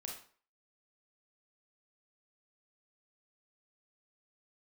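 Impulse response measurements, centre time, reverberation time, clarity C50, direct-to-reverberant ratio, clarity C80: 33 ms, 0.45 s, 4.5 dB, -1.0 dB, 9.5 dB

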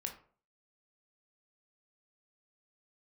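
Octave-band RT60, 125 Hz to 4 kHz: 0.50, 0.45, 0.50, 0.45, 0.35, 0.25 s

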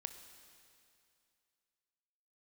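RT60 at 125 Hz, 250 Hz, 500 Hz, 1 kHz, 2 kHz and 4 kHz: 2.5, 2.5, 2.5, 2.5, 2.5, 2.5 s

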